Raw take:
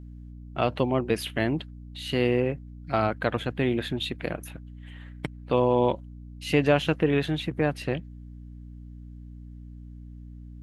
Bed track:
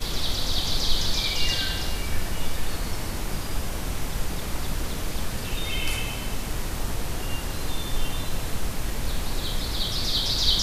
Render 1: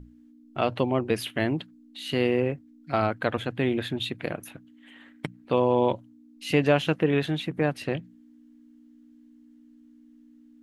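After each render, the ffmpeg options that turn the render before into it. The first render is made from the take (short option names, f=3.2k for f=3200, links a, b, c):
-af "bandreject=f=60:t=h:w=6,bandreject=f=120:t=h:w=6,bandreject=f=180:t=h:w=6"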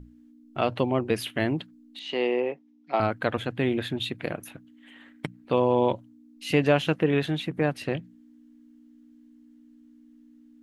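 -filter_complex "[0:a]asettb=1/sr,asplit=3[a][b][c];[a]atrim=end=1.994[d];[b]atrim=start=1.99:end=3,asetpts=PTS-STARTPTS,afade=t=in:d=0.004:c=qsin,afade=t=out:st=1.006:d=0.004:c=qsin,highpass=f=240:w=0.5412,highpass=f=240:w=1.3066,equalizer=f=270:t=q:w=4:g=-7,equalizer=f=860:t=q:w=4:g=6,equalizer=f=1.5k:t=q:w=4:g=-9,equalizer=f=4.4k:t=q:w=4:g=-6,lowpass=f=5.7k:w=0.5412,lowpass=f=5.7k:w=1.3066[e];[c]atrim=start=2.996[f];[d][e]acrossfade=d=0.004:c1=hsin:c2=qsin[g];[g][f]acrossfade=d=0.004:c1=qsin:c2=hsin"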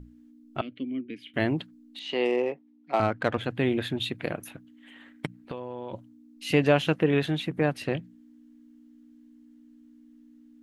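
-filter_complex "[0:a]asettb=1/sr,asplit=3[a][b][c];[a]atrim=end=0.614[d];[b]atrim=start=0.61:end=1.34,asetpts=PTS-STARTPTS,afade=t=in:d=0.004:c=qsin,afade=t=out:st=0.726:d=0.004:c=qsin,asplit=3[e][f][g];[e]bandpass=f=270:t=q:w=8,volume=0dB[h];[f]bandpass=f=2.29k:t=q:w=8,volume=-6dB[i];[g]bandpass=f=3.01k:t=q:w=8,volume=-9dB[j];[h][i][j]amix=inputs=3:normalize=0[k];[c]atrim=start=1.336[l];[d][k]acrossfade=d=0.004:c1=hsin:c2=qsin[m];[m][l]acrossfade=d=0.004:c1=qsin:c2=hsin,asplit=3[n][o][p];[n]afade=t=out:st=2.24:d=0.02[q];[o]adynamicsmooth=sensitivity=5.5:basefreq=4.3k,afade=t=in:st=2.24:d=0.02,afade=t=out:st=3.42:d=0.02[r];[p]afade=t=in:st=3.42:d=0.02[s];[q][r][s]amix=inputs=3:normalize=0,asplit=3[t][u][v];[t]afade=t=out:st=5.26:d=0.02[w];[u]acompressor=threshold=-31dB:ratio=12:attack=3.2:release=140:knee=1:detection=peak,afade=t=in:st=5.26:d=0.02,afade=t=out:st=5.92:d=0.02[x];[v]afade=t=in:st=5.92:d=0.02[y];[w][x][y]amix=inputs=3:normalize=0"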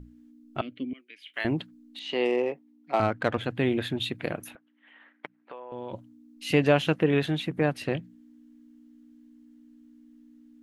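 -filter_complex "[0:a]asettb=1/sr,asplit=3[a][b][c];[a]atrim=end=0.934[d];[b]atrim=start=0.93:end=1.45,asetpts=PTS-STARTPTS,afade=t=in:d=0.004:c=qsin,afade=t=out:st=0.516:d=0.004:c=qsin,highpass=1.1k[e];[c]atrim=start=1.446[f];[d][e]acrossfade=d=0.004:c1=hsin:c2=qsin[g];[g][f]acrossfade=d=0.004:c1=qsin:c2=hsin,asettb=1/sr,asplit=3[h][i][j];[h]atrim=end=4.554[k];[i]atrim=start=4.55:end=5.72,asetpts=PTS-STARTPTS,afade=t=in:d=0.004:c=qsin,afade=t=out:st=1.166:d=0.004:c=qsin,highpass=610,lowpass=2.1k[l];[j]atrim=start=5.716[m];[k][l]acrossfade=d=0.004:c1=hsin:c2=qsin[n];[n][m]acrossfade=d=0.004:c1=qsin:c2=hsin"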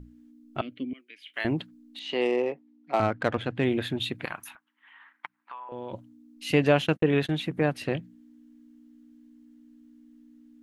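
-filter_complex "[0:a]asettb=1/sr,asplit=3[a][b][c];[a]atrim=end=2.214[d];[b]atrim=start=2.21:end=3.65,asetpts=PTS-STARTPTS,afade=t=in:d=0.004:c=qsin,afade=t=out:st=1.436:d=0.004:c=qsin,adynamicsmooth=sensitivity=4:basefreq=6.3k[e];[c]atrim=start=3.646[f];[d][e]acrossfade=d=0.004:c1=hsin:c2=qsin[g];[g][f]acrossfade=d=0.004:c1=qsin:c2=hsin,asettb=1/sr,asplit=3[h][i][j];[h]atrim=end=4.254[k];[i]atrim=start=4.25:end=5.69,asetpts=PTS-STARTPTS,afade=t=in:d=0.004:c=qsin,afade=t=out:st=1.436:d=0.004:c=qsin,lowshelf=f=700:t=q:w=3:g=-11.5[l];[j]atrim=start=5.686[m];[k][l]acrossfade=d=0.004:c1=hsin:c2=qsin[n];[n][m]acrossfade=d=0.004:c1=qsin:c2=hsin,asplit=3[o][p][q];[o]afade=t=out:st=6.5:d=0.02[r];[p]agate=range=-55dB:threshold=-34dB:ratio=16:release=100:detection=peak,afade=t=in:st=6.5:d=0.02,afade=t=out:st=7.37:d=0.02[s];[q]afade=t=in:st=7.37:d=0.02[t];[r][s][t]amix=inputs=3:normalize=0"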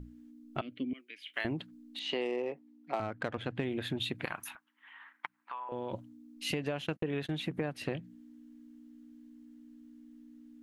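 -af "alimiter=limit=-14dB:level=0:latency=1:release=353,acompressor=threshold=-31dB:ratio=6"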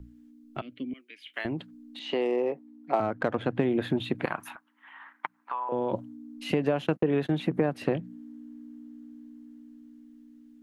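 -filter_complex "[0:a]acrossover=split=140|1400|3200[a][b][c][d];[b]dynaudnorm=f=460:g=9:m=10dB[e];[d]alimiter=level_in=15.5dB:limit=-24dB:level=0:latency=1:release=35,volume=-15.5dB[f];[a][e][c][f]amix=inputs=4:normalize=0"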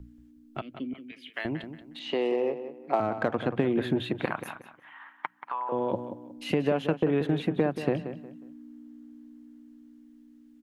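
-filter_complex "[0:a]asplit=2[a][b];[b]adelay=181,lowpass=f=4.2k:p=1,volume=-10.5dB,asplit=2[c][d];[d]adelay=181,lowpass=f=4.2k:p=1,volume=0.29,asplit=2[e][f];[f]adelay=181,lowpass=f=4.2k:p=1,volume=0.29[g];[a][c][e][g]amix=inputs=4:normalize=0"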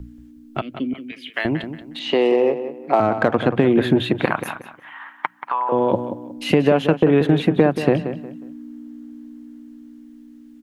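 -af "volume=10.5dB,alimiter=limit=-3dB:level=0:latency=1"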